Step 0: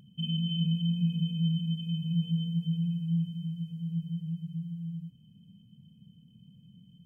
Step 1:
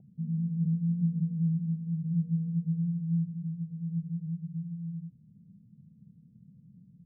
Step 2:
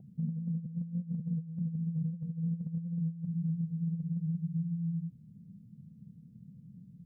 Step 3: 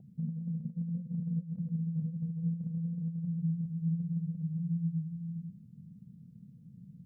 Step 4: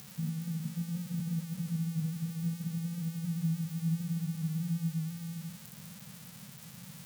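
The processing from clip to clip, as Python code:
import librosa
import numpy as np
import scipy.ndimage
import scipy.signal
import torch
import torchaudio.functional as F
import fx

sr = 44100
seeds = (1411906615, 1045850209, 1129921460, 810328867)

y1 = scipy.signal.sosfilt(scipy.signal.cheby1(8, 1.0, 780.0, 'lowpass', fs=sr, output='sos'), x)
y2 = fx.over_compress(y1, sr, threshold_db=-33.0, ratio=-0.5)
y3 = y2 + 10.0 ** (-4.0 / 20.0) * np.pad(y2, (int(410 * sr / 1000.0), 0))[:len(y2)]
y3 = y3 * librosa.db_to_amplitude(-1.5)
y4 = y3 + 0.5 * 10.0 ** (-31.0 / 20.0) * np.diff(np.sign(y3), prepend=np.sign(y3[:1]))
y4 = fx.room_flutter(y4, sr, wall_m=10.7, rt60_s=0.31)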